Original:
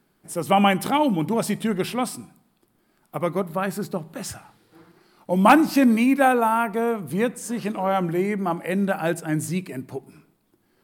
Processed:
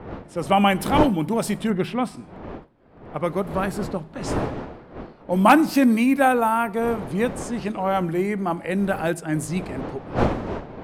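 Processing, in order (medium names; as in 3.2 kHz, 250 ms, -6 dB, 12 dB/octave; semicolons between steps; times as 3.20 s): wind noise 550 Hz -32 dBFS; level-controlled noise filter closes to 2.7 kHz, open at -19 dBFS; 1.70–2.17 s: tone controls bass +4 dB, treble -12 dB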